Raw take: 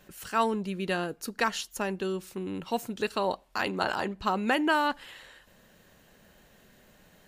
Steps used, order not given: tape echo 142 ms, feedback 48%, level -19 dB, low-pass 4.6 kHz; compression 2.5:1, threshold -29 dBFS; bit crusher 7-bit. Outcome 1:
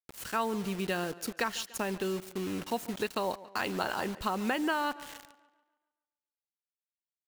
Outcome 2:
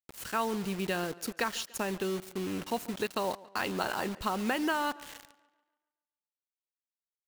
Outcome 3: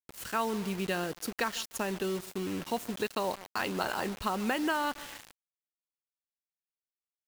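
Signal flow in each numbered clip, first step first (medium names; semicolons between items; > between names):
bit crusher > tape echo > compression; compression > bit crusher > tape echo; tape echo > compression > bit crusher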